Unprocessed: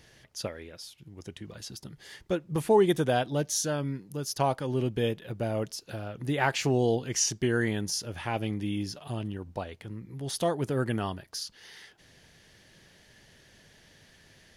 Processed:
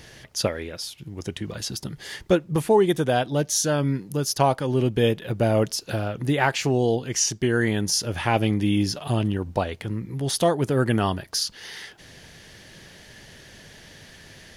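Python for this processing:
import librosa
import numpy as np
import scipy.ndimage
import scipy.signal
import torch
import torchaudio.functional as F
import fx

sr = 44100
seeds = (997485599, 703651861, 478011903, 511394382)

y = fx.rider(x, sr, range_db=4, speed_s=0.5)
y = F.gain(torch.from_numpy(y), 7.0).numpy()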